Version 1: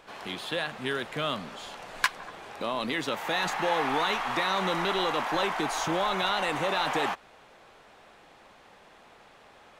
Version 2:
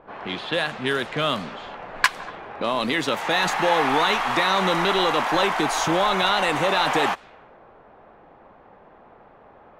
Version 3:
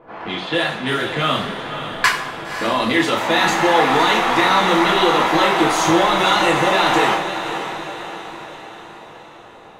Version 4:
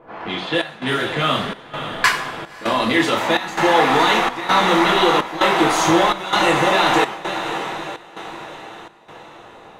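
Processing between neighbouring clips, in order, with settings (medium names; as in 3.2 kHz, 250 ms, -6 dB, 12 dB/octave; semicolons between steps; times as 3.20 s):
level-controlled noise filter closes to 920 Hz, open at -27 dBFS; trim +7 dB
echo that smears into a reverb 550 ms, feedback 52%, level -9.5 dB; two-slope reverb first 0.43 s, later 1.6 s, from -17 dB, DRR -4.5 dB; trim -1 dB
trance gate "xxxxxx..x" 147 bpm -12 dB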